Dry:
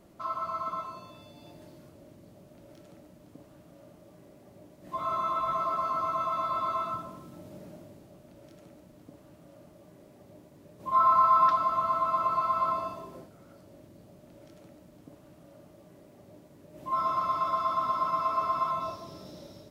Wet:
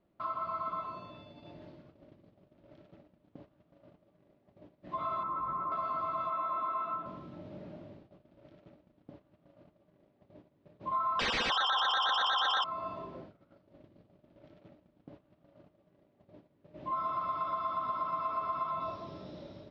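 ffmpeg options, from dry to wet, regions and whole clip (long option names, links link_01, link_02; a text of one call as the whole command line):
ffmpeg -i in.wav -filter_complex "[0:a]asettb=1/sr,asplit=3[link_01][link_02][link_03];[link_01]atrim=end=5.234[link_04];[link_02]atrim=start=5.23:end=5.72,asetpts=PTS-STARTPTS,afade=type=in:duration=0.004:curve=qsin,afade=type=out:start_time=0.486:duration=0.004:curve=qsin,lowpass=1200,bandreject=frequency=650:width=5.4[link_05];[link_03]atrim=start=5.716[link_06];[link_04][link_05]acrossfade=duration=0.004:curve1=hsin:curve2=qsin[link_07];[link_07][link_06]acrossfade=duration=0.004:curve1=qsin:curve2=hsin,asettb=1/sr,asplit=3[link_08][link_09][link_10];[link_08]atrim=end=6.304[link_11];[link_09]atrim=start=6.3:end=7.06,asetpts=PTS-STARTPTS,afade=type=in:duration=0.004:curve=qsin,afade=type=out:start_time=0.756:duration=0.004:curve=qsin,highpass=210,lowpass=2700,asplit=2[link_12][link_13];[link_13]adelay=19,volume=-8dB[link_14];[link_12][link_14]amix=inputs=2:normalize=0,atrim=end_sample=33516[link_15];[link_10]atrim=start=7.056[link_16];[link_11][link_15]acrossfade=duration=0.004:curve1=hsin:curve2=qsin[link_17];[link_17][link_16]acrossfade=duration=0.004:curve1=qsin:curve2=hsin,asettb=1/sr,asplit=3[link_18][link_19][link_20];[link_18]atrim=end=11.194[link_21];[link_19]atrim=start=11.19:end=12.64,asetpts=PTS-STARTPTS,afade=type=in:duration=0.004:curve=qsin,afade=type=out:start_time=1.446:duration=0.004:curve=qsin,asuperpass=centerf=1100:order=12:qfactor=2.4,aeval=exprs='0.224*sin(PI/2*8.91*val(0)/0.224)':channel_layout=same[link_22];[link_20]atrim=start=12.636[link_23];[link_21][link_22]acrossfade=duration=0.004:curve1=hsin:curve2=qsin[link_24];[link_24][link_23]acrossfade=duration=0.004:curve1=qsin:curve2=hsin,lowpass=frequency=3900:width=0.5412,lowpass=frequency=3900:width=1.3066,agate=range=-16dB:threshold=-51dB:ratio=16:detection=peak,acompressor=threshold=-33dB:ratio=3" out.wav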